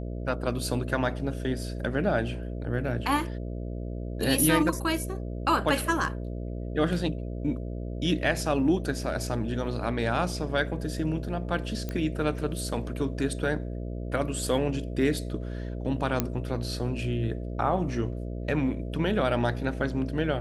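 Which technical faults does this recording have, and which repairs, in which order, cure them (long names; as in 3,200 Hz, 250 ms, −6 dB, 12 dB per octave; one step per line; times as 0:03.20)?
mains buzz 60 Hz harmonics 11 −34 dBFS
0:11.89: click −19 dBFS
0:16.20: click −9 dBFS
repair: click removal
hum removal 60 Hz, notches 11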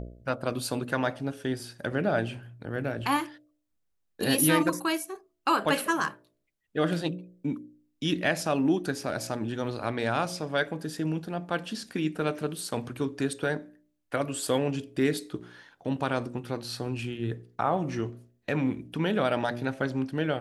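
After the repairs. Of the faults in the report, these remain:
none of them is left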